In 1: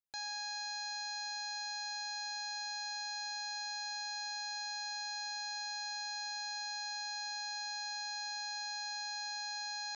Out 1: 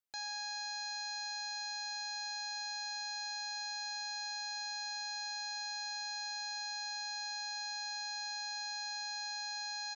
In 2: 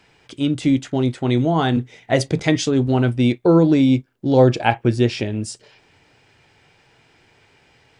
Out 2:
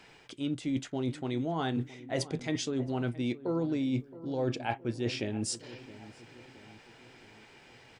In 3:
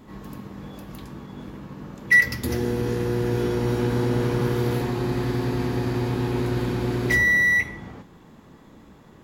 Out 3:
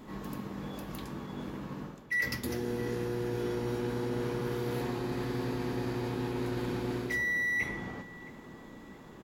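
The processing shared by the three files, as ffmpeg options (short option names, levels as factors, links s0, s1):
-filter_complex "[0:a]equalizer=f=77:w=0.91:g=-7,areverse,acompressor=threshold=0.0282:ratio=5,areverse,asplit=2[s0][s1];[s1]adelay=669,lowpass=f=1500:p=1,volume=0.15,asplit=2[s2][s3];[s3]adelay=669,lowpass=f=1500:p=1,volume=0.53,asplit=2[s4][s5];[s5]adelay=669,lowpass=f=1500:p=1,volume=0.53,asplit=2[s6][s7];[s7]adelay=669,lowpass=f=1500:p=1,volume=0.53,asplit=2[s8][s9];[s9]adelay=669,lowpass=f=1500:p=1,volume=0.53[s10];[s0][s2][s4][s6][s8][s10]amix=inputs=6:normalize=0"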